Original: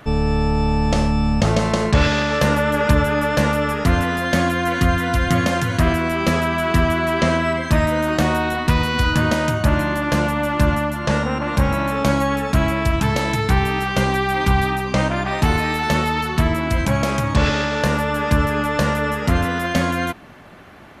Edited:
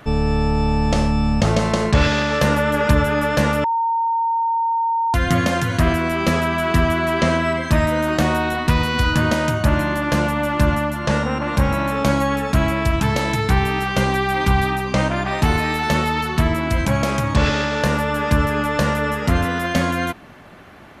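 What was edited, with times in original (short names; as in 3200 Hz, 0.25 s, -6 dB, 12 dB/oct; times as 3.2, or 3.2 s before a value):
3.64–5.14 bleep 917 Hz -16.5 dBFS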